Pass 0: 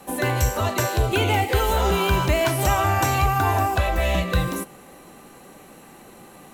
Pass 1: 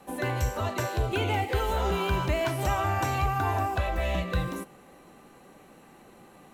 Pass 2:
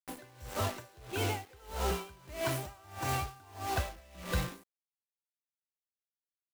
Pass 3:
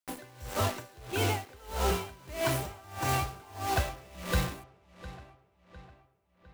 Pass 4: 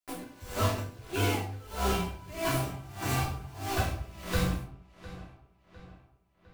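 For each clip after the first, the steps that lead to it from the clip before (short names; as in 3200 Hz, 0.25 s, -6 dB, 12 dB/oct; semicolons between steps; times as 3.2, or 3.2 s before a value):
high shelf 5500 Hz -8 dB; gain -6.5 dB
compressor 2:1, threshold -30 dBFS, peak gain reduction 5 dB; bit-crush 6-bit; dB-linear tremolo 1.6 Hz, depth 27 dB
darkening echo 0.705 s, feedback 49%, low-pass 4300 Hz, level -16 dB; gain +4 dB
shoebox room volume 250 m³, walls furnished, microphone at 3.1 m; gain -5 dB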